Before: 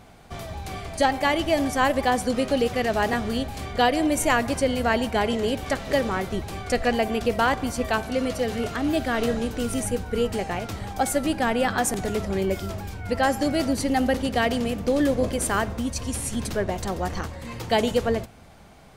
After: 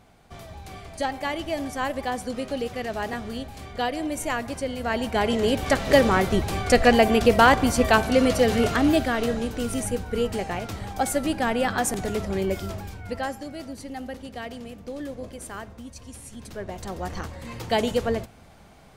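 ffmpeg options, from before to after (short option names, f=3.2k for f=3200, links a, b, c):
-af "volume=17.5dB,afade=t=in:st=4.79:d=1.19:silence=0.237137,afade=t=out:st=8.77:d=0.4:silence=0.446684,afade=t=out:st=12.72:d=0.72:silence=0.251189,afade=t=in:st=16.4:d=1:silence=0.266073"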